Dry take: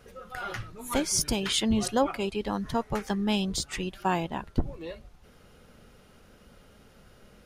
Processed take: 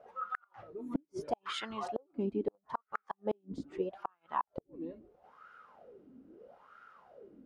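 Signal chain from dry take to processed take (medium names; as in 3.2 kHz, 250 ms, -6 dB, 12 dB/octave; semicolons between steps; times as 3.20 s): wah-wah 0.77 Hz 260–1400 Hz, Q 9.9; inverted gate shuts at -35 dBFS, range -42 dB; trim +14 dB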